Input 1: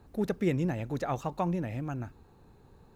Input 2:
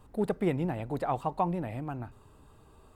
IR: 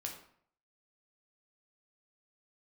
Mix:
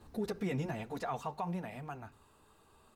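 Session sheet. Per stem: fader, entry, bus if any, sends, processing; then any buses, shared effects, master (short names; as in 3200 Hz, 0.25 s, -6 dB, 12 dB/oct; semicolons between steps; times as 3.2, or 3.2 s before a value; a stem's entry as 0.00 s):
+2.5 dB, 0.00 s, send -20.5 dB, bell 4800 Hz +6 dB 0.77 oct; ensemble effect; auto duck -14 dB, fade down 1.70 s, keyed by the second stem
-0.5 dB, 4.2 ms, polarity flipped, no send, HPF 1000 Hz 6 dB/oct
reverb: on, RT60 0.60 s, pre-delay 8 ms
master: limiter -27 dBFS, peak gain reduction 9.5 dB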